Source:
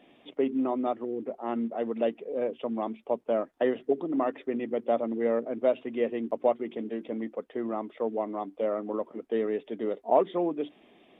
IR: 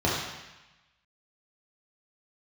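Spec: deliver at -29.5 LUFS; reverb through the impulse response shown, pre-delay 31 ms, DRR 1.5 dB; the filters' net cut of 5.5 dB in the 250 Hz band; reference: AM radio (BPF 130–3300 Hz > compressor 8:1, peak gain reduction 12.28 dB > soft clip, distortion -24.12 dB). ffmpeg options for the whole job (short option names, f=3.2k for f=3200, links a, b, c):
-filter_complex "[0:a]equalizer=f=250:t=o:g=-6.5,asplit=2[a][b];[1:a]atrim=start_sample=2205,adelay=31[c];[b][c]afir=irnorm=-1:irlink=0,volume=-16dB[d];[a][d]amix=inputs=2:normalize=0,highpass=130,lowpass=3.3k,acompressor=threshold=-28dB:ratio=8,asoftclip=threshold=-21.5dB,volume=4.5dB"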